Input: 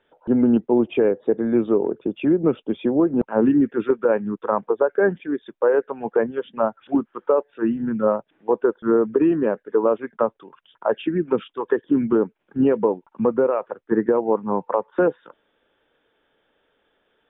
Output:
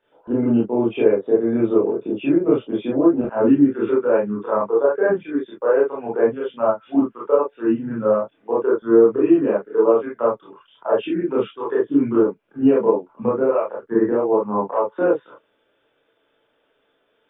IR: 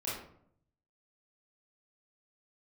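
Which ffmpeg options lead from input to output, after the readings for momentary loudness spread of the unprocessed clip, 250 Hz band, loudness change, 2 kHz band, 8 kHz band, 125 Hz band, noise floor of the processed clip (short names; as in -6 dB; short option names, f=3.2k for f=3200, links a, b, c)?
6 LU, +1.5 dB, +2.0 dB, -0.5 dB, n/a, +0.5 dB, -67 dBFS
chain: -filter_complex "[0:a]lowshelf=f=90:g=-8[a];[1:a]atrim=start_sample=2205,atrim=end_sample=3528[b];[a][b]afir=irnorm=-1:irlink=0,volume=-1dB"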